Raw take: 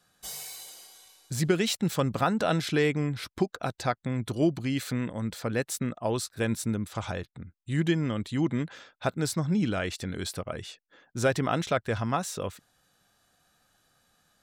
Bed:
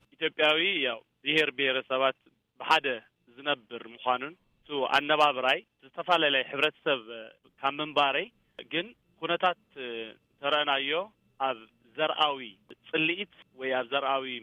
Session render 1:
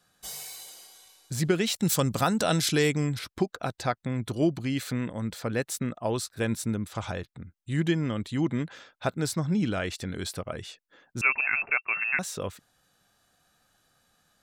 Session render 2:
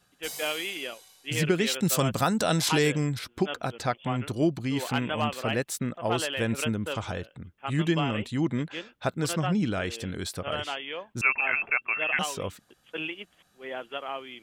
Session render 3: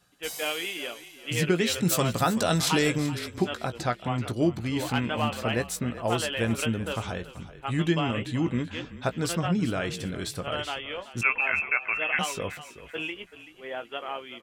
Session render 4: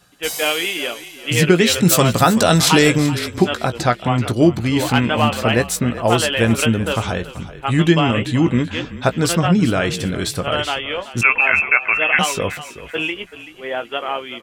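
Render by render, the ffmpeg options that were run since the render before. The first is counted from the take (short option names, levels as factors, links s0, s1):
-filter_complex "[0:a]asettb=1/sr,asplit=3[s0][s1][s2];[s0]atrim=end=1.764[s3];[s1]atrim=start=1.76:end=3.19,asetpts=PTS-STARTPTS,afade=t=in:d=0.004:c=qsin,afade=t=out:st=1.426:d=0.004:c=qsin,bass=f=250:g=2,treble=f=4000:g=13[s4];[s2]atrim=start=3.186[s5];[s3][s4]acrossfade=d=0.004:c1=hsin:c2=qsin[s6];[s6][s5]acrossfade=d=0.004:c1=qsin:c2=hsin,asettb=1/sr,asplit=3[s7][s8][s9];[s7]atrim=end=11.214[s10];[s8]atrim=start=11.21:end=12.19,asetpts=PTS-STARTPTS,afade=t=in:d=0.004:c=qsin,afade=t=out:st=0.976:d=0.004:c=qsin,lowpass=f=2400:t=q:w=0.5098,lowpass=f=2400:t=q:w=0.6013,lowpass=f=2400:t=q:w=0.9,lowpass=f=2400:t=q:w=2.563,afreqshift=-2800[s11];[s9]atrim=start=12.186[s12];[s10][s11]acrossfade=d=0.004:c1=hsin:c2=qsin[s13];[s13][s12]acrossfade=d=0.004:c1=qsin:c2=hsin"
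-filter_complex "[1:a]volume=0.447[s0];[0:a][s0]amix=inputs=2:normalize=0"
-filter_complex "[0:a]asplit=2[s0][s1];[s1]adelay=17,volume=0.299[s2];[s0][s2]amix=inputs=2:normalize=0,asplit=4[s3][s4][s5][s6];[s4]adelay=381,afreqshift=-35,volume=0.178[s7];[s5]adelay=762,afreqshift=-70,volume=0.0569[s8];[s6]adelay=1143,afreqshift=-105,volume=0.0182[s9];[s3][s7][s8][s9]amix=inputs=4:normalize=0"
-af "volume=3.55,alimiter=limit=0.891:level=0:latency=1"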